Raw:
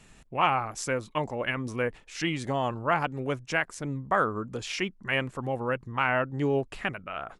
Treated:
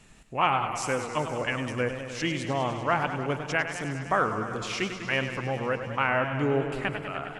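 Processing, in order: thin delay 0.186 s, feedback 67%, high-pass 5100 Hz, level -14 dB; warbling echo 0.101 s, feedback 79%, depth 119 cents, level -10 dB

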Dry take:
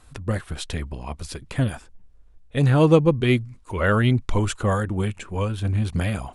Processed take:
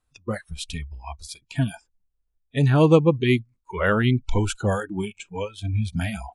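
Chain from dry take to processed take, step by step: 3.93–5.98 notch 1100 Hz, Q 6.4; spectral noise reduction 24 dB

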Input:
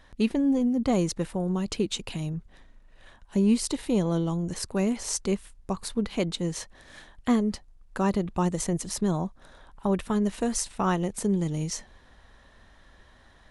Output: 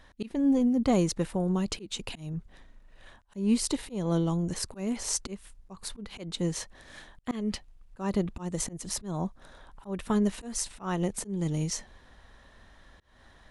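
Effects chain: 7.31–7.97 bell 2700 Hz +12 dB -> +2.5 dB 1 oct; auto swell 0.235 s

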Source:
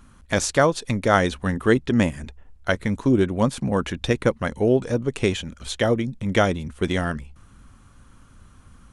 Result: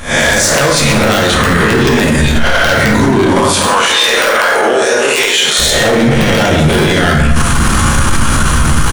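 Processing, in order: spectral swells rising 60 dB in 0.52 s; recorder AGC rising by 74 dB/s; wrapped overs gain 4 dB; 3.41–5.59 HPF 710 Hz 12 dB/oct; hard clip -15 dBFS, distortion -10 dB; tilt shelf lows -3.5 dB, about 1200 Hz; doubler 13 ms -12 dB; plate-style reverb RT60 1.4 s, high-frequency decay 0.5×, DRR -1.5 dB; maximiser +21 dB; gain -1 dB

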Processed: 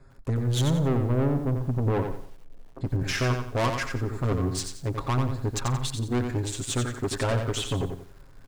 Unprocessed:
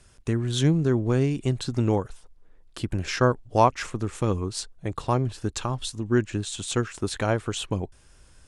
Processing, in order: Wiener smoothing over 15 samples; 0.79–2.81 LPF 1000 Hz 24 dB/oct; comb 7.4 ms, depth 99%; soft clip -23.5 dBFS, distortion -5 dB; outdoor echo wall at 23 m, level -21 dB; lo-fi delay 89 ms, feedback 35%, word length 9-bit, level -6 dB; gain +1.5 dB

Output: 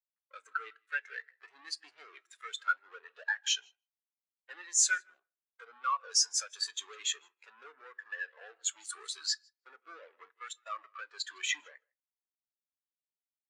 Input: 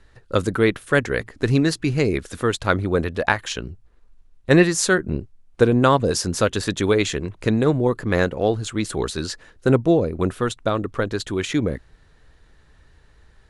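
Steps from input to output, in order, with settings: high shelf 2300 Hz -5.5 dB; compressor 16:1, threshold -23 dBFS, peak gain reduction 15 dB; dynamic EQ 7200 Hz, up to +6 dB, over -54 dBFS, Q 1.1; fuzz box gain 34 dB, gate -40 dBFS; HPF 1400 Hz 12 dB/oct; feedback echo 0.158 s, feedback 20%, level -14 dB; shoebox room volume 280 m³, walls mixed, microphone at 0.31 m; spectral expander 2.5:1; gain -8 dB

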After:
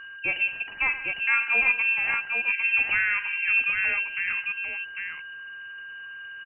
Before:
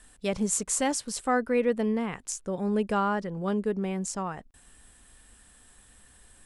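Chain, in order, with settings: whine 1300 Hz -41 dBFS; inverted band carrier 2900 Hz; tapped delay 48/112/186/802 ms -13.5/-15/-19/-4.5 dB; gain +1.5 dB

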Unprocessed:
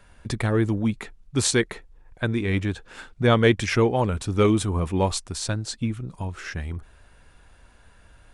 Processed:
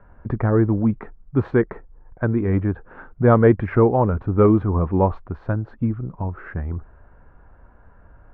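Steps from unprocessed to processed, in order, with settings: LPF 1400 Hz 24 dB/oct; de-esser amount 75%; gain +4.5 dB

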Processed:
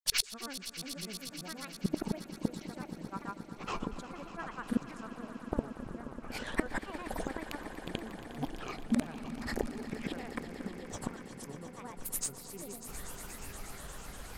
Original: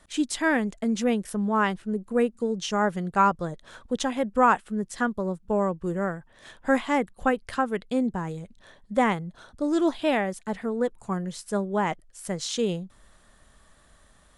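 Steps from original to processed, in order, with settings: flipped gate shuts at -26 dBFS, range -33 dB; grains, pitch spread up and down by 7 st; swelling echo 0.119 s, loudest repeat 5, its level -15 dB; gain +12 dB

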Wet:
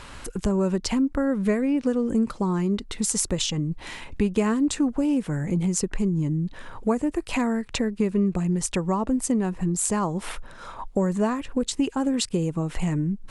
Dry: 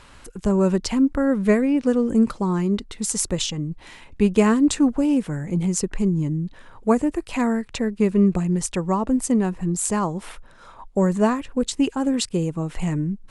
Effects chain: compressor 2.5:1, threshold -31 dBFS, peak gain reduction 13 dB; gain +6 dB

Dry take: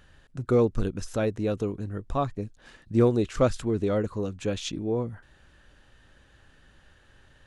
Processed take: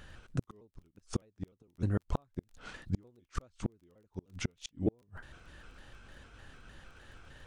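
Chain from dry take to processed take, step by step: trilling pitch shifter -2.5 st, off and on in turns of 0.152 s; flipped gate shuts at -22 dBFS, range -42 dB; crackle 15/s -57 dBFS; gain +4 dB

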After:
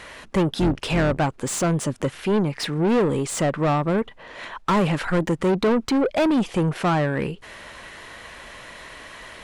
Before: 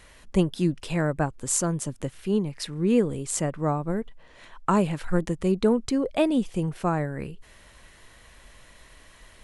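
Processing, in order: 0.55–1.18 octaver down 2 oct, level 0 dB; low shelf 310 Hz +6.5 dB; overdrive pedal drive 29 dB, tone 2500 Hz, clips at -5 dBFS; gain -6.5 dB

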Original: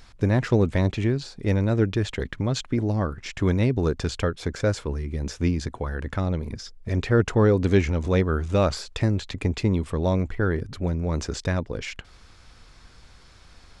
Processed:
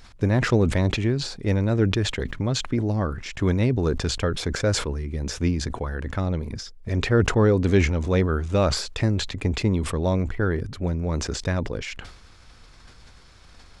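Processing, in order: sustainer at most 73 dB/s

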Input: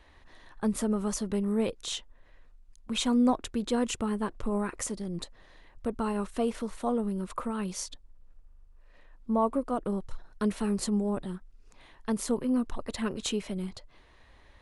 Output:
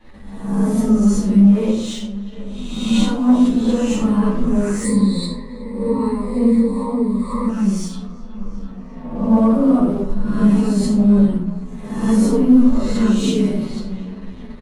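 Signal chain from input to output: spectral swells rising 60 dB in 0.88 s; bell 210 Hz +10.5 dB 2.1 oct; notches 60/120/180/240/300/360/420/480 Hz; dark delay 0.368 s, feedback 56%, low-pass 3400 Hz, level -19 dB; shoebox room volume 650 m³, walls furnished, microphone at 9.1 m; sample leveller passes 1; 4.84–7.49 ripple EQ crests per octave 0.96, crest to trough 17 dB; AGC gain up to 6 dB; endless flanger 9.6 ms -1.1 Hz; gain -1.5 dB

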